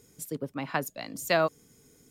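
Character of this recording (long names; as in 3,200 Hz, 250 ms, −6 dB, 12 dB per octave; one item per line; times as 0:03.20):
background noise floor −61 dBFS
spectral slope −4.5 dB per octave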